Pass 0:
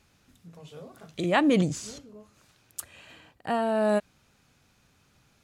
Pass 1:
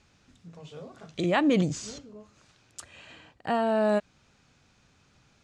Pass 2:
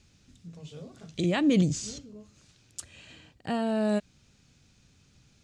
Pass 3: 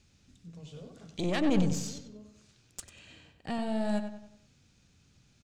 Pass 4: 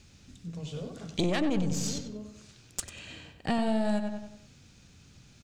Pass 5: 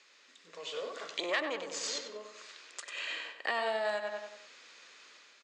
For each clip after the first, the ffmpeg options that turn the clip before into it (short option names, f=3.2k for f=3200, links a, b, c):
-filter_complex "[0:a]asplit=2[a][b];[b]alimiter=limit=-19.5dB:level=0:latency=1:release=234,volume=-0.5dB[c];[a][c]amix=inputs=2:normalize=0,lowpass=f=7.7k:w=0.5412,lowpass=f=7.7k:w=1.3066,volume=-4.5dB"
-af "equalizer=f=1k:w=0.47:g=-12.5,volume=4.5dB"
-filter_complex "[0:a]aeval=exprs='(tanh(12.6*val(0)+0.75)-tanh(0.75))/12.6':c=same,asplit=2[a][b];[b]adelay=95,lowpass=f=3.5k:p=1,volume=-8dB,asplit=2[c][d];[d]adelay=95,lowpass=f=3.5k:p=1,volume=0.43,asplit=2[e][f];[f]adelay=95,lowpass=f=3.5k:p=1,volume=0.43,asplit=2[g][h];[h]adelay=95,lowpass=f=3.5k:p=1,volume=0.43,asplit=2[i][j];[j]adelay=95,lowpass=f=3.5k:p=1,volume=0.43[k];[c][e][g][i][k]amix=inputs=5:normalize=0[l];[a][l]amix=inputs=2:normalize=0,volume=1dB"
-af "acompressor=threshold=-32dB:ratio=8,volume=8.5dB"
-af "alimiter=level_in=0.5dB:limit=-24dB:level=0:latency=1:release=229,volume=-0.5dB,dynaudnorm=f=340:g=3:m=7dB,highpass=f=480:w=0.5412,highpass=f=480:w=1.3066,equalizer=f=760:t=q:w=4:g=-7,equalizer=f=1.1k:t=q:w=4:g=6,equalizer=f=1.9k:t=q:w=4:g=7,equalizer=f=5.8k:t=q:w=4:g=-6,lowpass=f=6.8k:w=0.5412,lowpass=f=6.8k:w=1.3066"